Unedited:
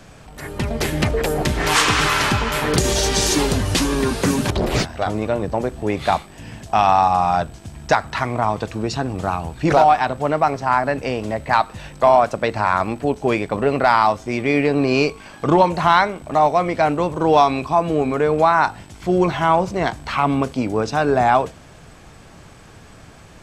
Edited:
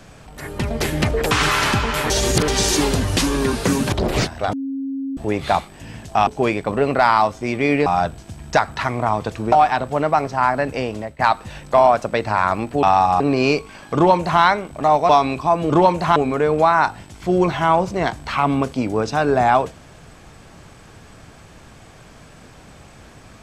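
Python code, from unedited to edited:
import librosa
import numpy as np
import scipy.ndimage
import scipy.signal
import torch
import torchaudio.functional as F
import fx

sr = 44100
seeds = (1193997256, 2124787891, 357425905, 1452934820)

y = fx.edit(x, sr, fx.cut(start_s=1.31, length_s=0.58),
    fx.reverse_span(start_s=2.68, length_s=0.38),
    fx.bleep(start_s=5.11, length_s=0.64, hz=271.0, db=-22.5),
    fx.swap(start_s=6.85, length_s=0.37, other_s=13.12, other_length_s=1.59),
    fx.cut(start_s=8.88, length_s=0.93),
    fx.fade_out_to(start_s=11.03, length_s=0.45, curve='qsin', floor_db=-18.0),
    fx.duplicate(start_s=15.46, length_s=0.46, to_s=17.96),
    fx.cut(start_s=16.6, length_s=0.75), tone=tone)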